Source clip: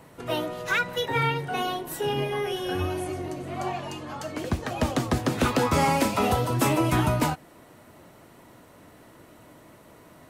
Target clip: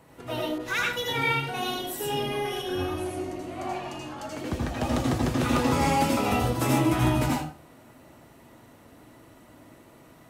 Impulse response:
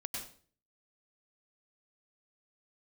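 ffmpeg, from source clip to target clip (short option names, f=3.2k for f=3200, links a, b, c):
-filter_complex "[1:a]atrim=start_sample=2205,asetrate=52920,aresample=44100[a];[0:a][a]afir=irnorm=-1:irlink=0,asettb=1/sr,asplit=3[b][c][d];[b]atrim=end=0.584[e];[c]atrim=start=0.58:end=2.62,asetpts=PTS-STARTPTS,afade=t=in:d=0.004:c=qsin,afade=t=out:st=2.036:d=0.004:c=qsin,adynamicequalizer=threshold=0.00891:dfrequency=2800:dqfactor=0.7:tfrequency=2800:tqfactor=0.7:attack=5:release=100:ratio=0.375:range=2.5:mode=boostabove:tftype=highshelf[f];[d]atrim=start=2.616[g];[e][f]acrossfade=d=0.004:c1=hsin:c2=qsin[h];[h][g]acrossfade=d=0.004:c1=qsin:c2=hsin"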